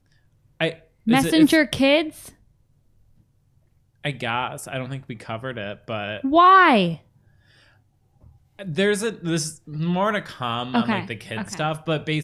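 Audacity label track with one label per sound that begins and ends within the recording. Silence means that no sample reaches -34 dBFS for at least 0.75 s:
4.040000	6.960000	sound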